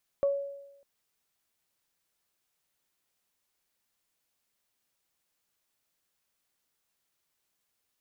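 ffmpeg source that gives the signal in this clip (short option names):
-f lavfi -i "aevalsrc='0.0891*pow(10,-3*t/0.94)*sin(2*PI*560*t)+0.00944*pow(10,-3*t/0.21)*sin(2*PI*1120*t)':d=0.6:s=44100"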